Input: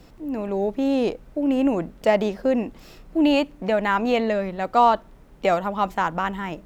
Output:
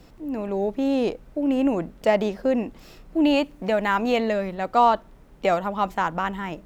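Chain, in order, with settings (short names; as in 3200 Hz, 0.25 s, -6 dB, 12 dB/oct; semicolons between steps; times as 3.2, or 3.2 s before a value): 3.43–4.55 high shelf 5100 Hz +4.5 dB; gain -1 dB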